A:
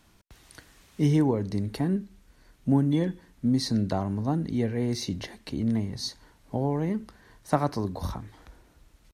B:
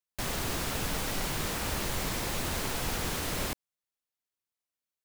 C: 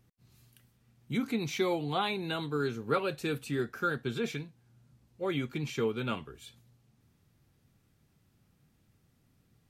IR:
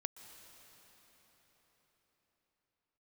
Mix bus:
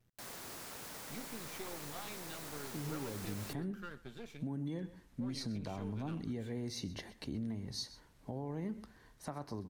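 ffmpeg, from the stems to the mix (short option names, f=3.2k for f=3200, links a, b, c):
-filter_complex "[0:a]alimiter=limit=-21.5dB:level=0:latency=1:release=220,dynaudnorm=f=340:g=9:m=7dB,adelay=1750,volume=-14dB,asplit=2[a][b];[b]volume=-17dB[c];[1:a]highpass=f=320:p=1,equalizer=f=3k:t=o:w=0.77:g=-5,acrusher=bits=5:mix=0:aa=0.000001,volume=-13.5dB[d];[2:a]aeval=exprs='if(lt(val(0),0),0.251*val(0),val(0))':c=same,acompressor=threshold=-60dB:ratio=1.5,volume=-3dB,asplit=2[e][f];[f]volume=-20dB[g];[c][g]amix=inputs=2:normalize=0,aecho=0:1:127:1[h];[a][d][e][h]amix=inputs=4:normalize=0,acompressor=threshold=-36dB:ratio=3"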